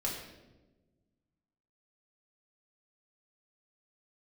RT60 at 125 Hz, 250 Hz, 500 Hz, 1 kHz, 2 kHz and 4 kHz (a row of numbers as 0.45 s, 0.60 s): 2.0 s, 1.9 s, 1.4 s, 0.90 s, 0.80 s, 0.75 s